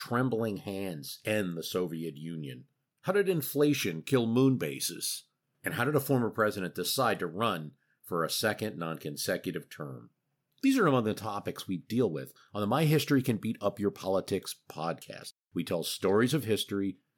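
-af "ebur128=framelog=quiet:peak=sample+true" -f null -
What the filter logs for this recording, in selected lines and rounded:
Integrated loudness:
  I:         -30.9 LUFS
  Threshold: -41.3 LUFS
Loudness range:
  LRA:         4.0 LU
  Threshold: -51.3 LUFS
  LRA low:   -33.6 LUFS
  LRA high:  -29.6 LUFS
Sample peak:
  Peak:      -13.9 dBFS
True peak:
  Peak:      -13.9 dBFS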